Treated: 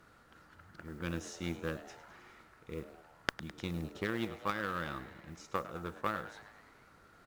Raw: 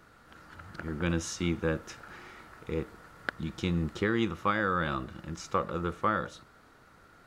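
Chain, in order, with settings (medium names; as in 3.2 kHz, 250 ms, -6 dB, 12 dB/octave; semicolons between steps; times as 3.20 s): reverse; upward compressor, threshold -42 dBFS; reverse; modulation noise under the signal 26 dB; Chebyshev shaper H 3 -10 dB, 5 -30 dB, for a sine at -11 dBFS; frequency-shifting echo 104 ms, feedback 63%, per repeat +130 Hz, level -15 dB; trim +3 dB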